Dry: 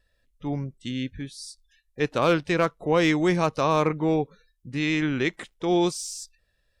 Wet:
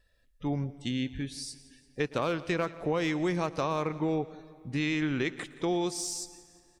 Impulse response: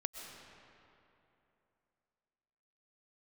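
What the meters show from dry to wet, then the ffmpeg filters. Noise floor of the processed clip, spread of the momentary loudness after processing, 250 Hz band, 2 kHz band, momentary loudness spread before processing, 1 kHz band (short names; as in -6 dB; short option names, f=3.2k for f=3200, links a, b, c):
-66 dBFS, 11 LU, -5.5 dB, -6.5 dB, 15 LU, -7.5 dB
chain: -filter_complex "[0:a]acompressor=threshold=-26dB:ratio=6,aecho=1:1:174|348|522|696:0.112|0.0527|0.0248|0.0116,asplit=2[a][b];[1:a]atrim=start_sample=2205,adelay=113[c];[b][c]afir=irnorm=-1:irlink=0,volume=-19dB[d];[a][d]amix=inputs=2:normalize=0"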